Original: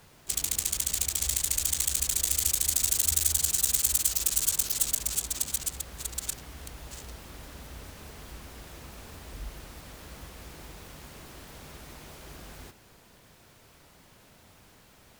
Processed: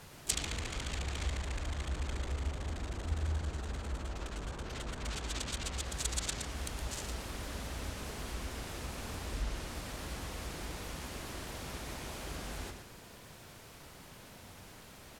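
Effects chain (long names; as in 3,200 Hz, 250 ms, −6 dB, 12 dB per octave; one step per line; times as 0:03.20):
slap from a distant wall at 20 metres, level −7 dB
treble cut that deepens with the level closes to 1,100 Hz, closed at −22.5 dBFS
level +3.5 dB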